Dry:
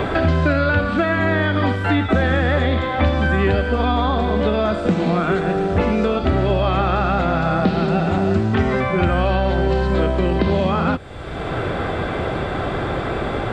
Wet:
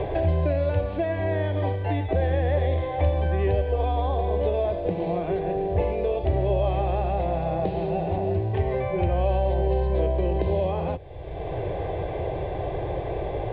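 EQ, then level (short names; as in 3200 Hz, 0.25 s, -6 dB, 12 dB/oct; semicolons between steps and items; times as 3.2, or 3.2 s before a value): air absorption 490 m; fixed phaser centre 560 Hz, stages 4; -2.0 dB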